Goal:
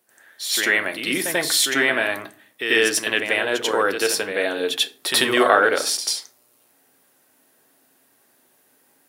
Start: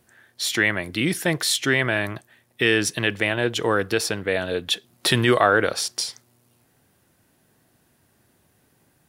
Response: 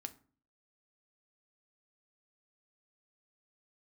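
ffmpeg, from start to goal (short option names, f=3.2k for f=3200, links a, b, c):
-filter_complex "[0:a]highpass=350,highshelf=f=11k:g=8,asplit=2[a][b];[1:a]atrim=start_sample=2205,adelay=90[c];[b][c]afir=irnorm=-1:irlink=0,volume=11dB[d];[a][d]amix=inputs=2:normalize=0,volume=-5.5dB"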